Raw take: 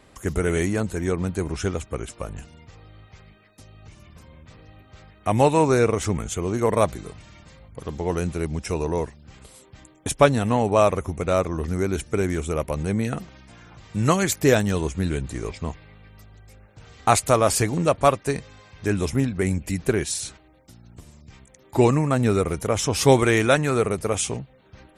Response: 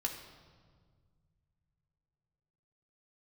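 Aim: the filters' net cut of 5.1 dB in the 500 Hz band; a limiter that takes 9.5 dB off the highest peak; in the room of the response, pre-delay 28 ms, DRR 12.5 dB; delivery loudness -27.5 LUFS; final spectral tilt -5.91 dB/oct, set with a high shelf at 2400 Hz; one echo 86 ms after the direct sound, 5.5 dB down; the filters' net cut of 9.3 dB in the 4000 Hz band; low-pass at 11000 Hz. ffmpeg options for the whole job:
-filter_complex "[0:a]lowpass=11k,equalizer=f=500:t=o:g=-6,highshelf=f=2.4k:g=-6.5,equalizer=f=4k:t=o:g=-6,alimiter=limit=-16dB:level=0:latency=1,aecho=1:1:86:0.531,asplit=2[a][b];[1:a]atrim=start_sample=2205,adelay=28[c];[b][c]afir=irnorm=-1:irlink=0,volume=-14dB[d];[a][d]amix=inputs=2:normalize=0,volume=-0.5dB"

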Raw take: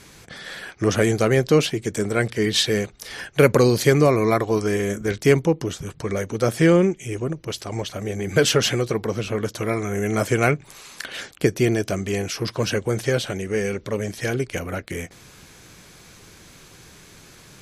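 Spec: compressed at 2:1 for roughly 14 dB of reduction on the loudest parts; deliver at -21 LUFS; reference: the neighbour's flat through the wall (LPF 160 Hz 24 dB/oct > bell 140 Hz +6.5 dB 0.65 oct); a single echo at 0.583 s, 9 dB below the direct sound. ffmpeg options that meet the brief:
-af "acompressor=threshold=-37dB:ratio=2,lowpass=f=160:w=0.5412,lowpass=f=160:w=1.3066,equalizer=f=140:t=o:w=0.65:g=6.5,aecho=1:1:583:0.355,volume=16dB"

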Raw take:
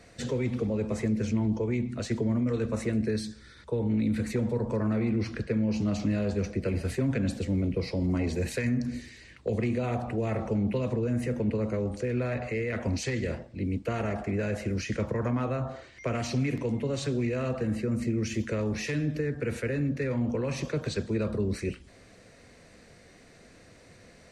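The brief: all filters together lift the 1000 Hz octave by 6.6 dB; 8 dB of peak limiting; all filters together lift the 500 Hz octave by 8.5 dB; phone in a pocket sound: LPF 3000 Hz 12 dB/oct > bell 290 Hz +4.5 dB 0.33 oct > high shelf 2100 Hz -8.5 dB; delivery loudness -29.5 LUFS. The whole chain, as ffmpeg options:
-af "equalizer=f=500:t=o:g=8.5,equalizer=f=1k:t=o:g=7.5,alimiter=limit=-17dB:level=0:latency=1,lowpass=3k,equalizer=f=290:t=o:w=0.33:g=4.5,highshelf=f=2.1k:g=-8.5,volume=-3dB"

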